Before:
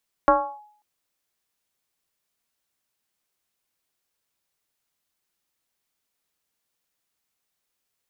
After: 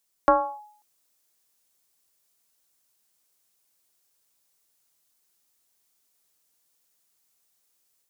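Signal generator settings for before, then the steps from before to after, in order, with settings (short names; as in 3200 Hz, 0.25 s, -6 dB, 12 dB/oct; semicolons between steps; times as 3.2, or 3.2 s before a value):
FM tone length 0.54 s, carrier 840 Hz, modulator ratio 0.32, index 1.7, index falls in 0.33 s linear, decay 0.57 s, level -10 dB
tone controls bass -3 dB, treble +14 dB; AGC gain up to 3.5 dB; high shelf 2300 Hz -7.5 dB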